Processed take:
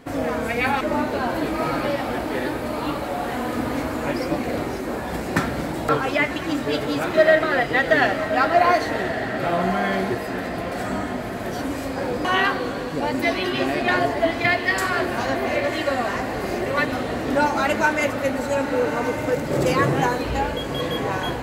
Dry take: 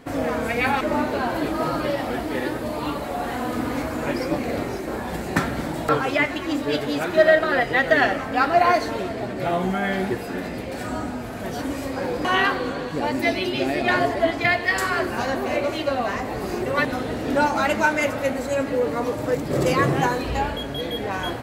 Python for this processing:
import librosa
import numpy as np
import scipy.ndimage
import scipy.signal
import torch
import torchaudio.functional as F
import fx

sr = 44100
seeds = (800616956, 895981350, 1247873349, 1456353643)

y = fx.echo_diffused(x, sr, ms=1165, feedback_pct=47, wet_db=-9)